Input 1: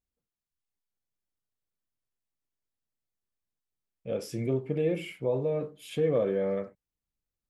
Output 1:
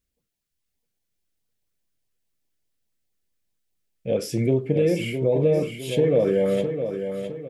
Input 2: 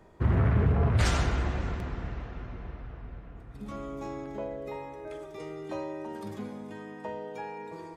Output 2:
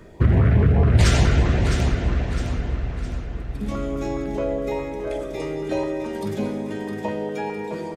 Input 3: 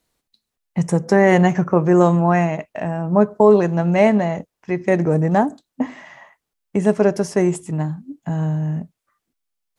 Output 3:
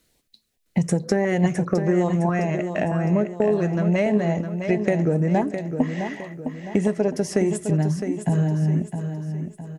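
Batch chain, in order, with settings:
downward compressor 6 to 1, threshold −24 dBFS
auto-filter notch saw up 4.8 Hz 740–1,500 Hz
on a send: repeating echo 660 ms, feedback 42%, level −8 dB
on the sum: loudness normalisation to −23 LKFS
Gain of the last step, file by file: +9.5, +12.0, +6.5 decibels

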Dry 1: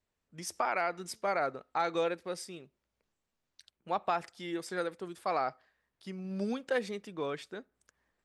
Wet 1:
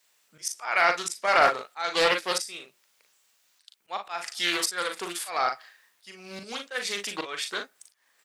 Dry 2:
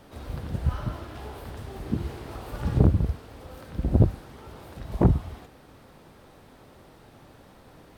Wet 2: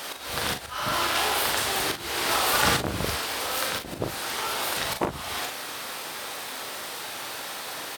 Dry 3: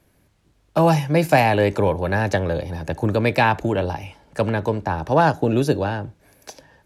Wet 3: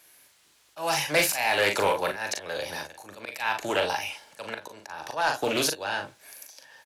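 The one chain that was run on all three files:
spectral tilt +4 dB per octave
volume swells 358 ms
on a send: ambience of single reflections 40 ms −6 dB, 55 ms −14 dB
on the sum: mid-hump overdrive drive 10 dB, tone 7,500 Hz, clips at −8 dBFS
highs frequency-modulated by the lows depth 0.22 ms
loudness normalisation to −27 LKFS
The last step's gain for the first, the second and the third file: +8.0, +12.5, −3.0 decibels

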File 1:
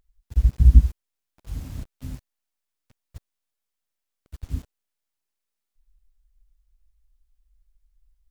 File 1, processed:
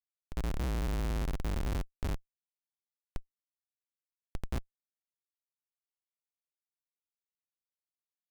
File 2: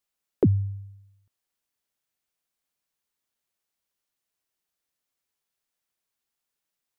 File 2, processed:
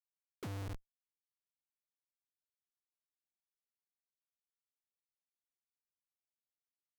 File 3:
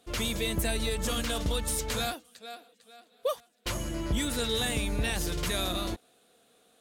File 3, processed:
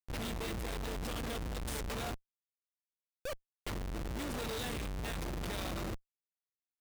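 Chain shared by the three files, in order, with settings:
spring reverb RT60 3.9 s, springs 56 ms, chirp 35 ms, DRR 16.5 dB
comparator with hysteresis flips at −31 dBFS
level −6 dB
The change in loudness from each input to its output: −15.5, −20.5, −9.0 LU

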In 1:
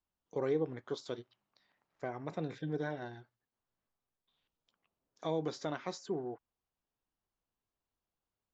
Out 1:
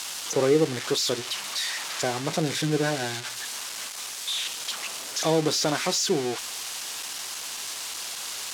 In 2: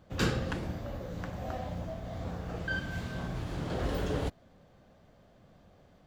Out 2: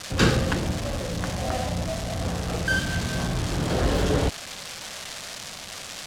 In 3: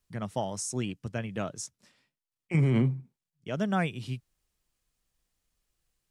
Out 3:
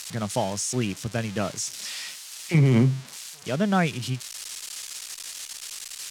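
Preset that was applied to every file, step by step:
spike at every zero crossing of −26 dBFS
low-pass filter 6,300 Hz 12 dB per octave
loudness normalisation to −27 LKFS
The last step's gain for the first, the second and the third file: +12.0, +9.5, +5.5 decibels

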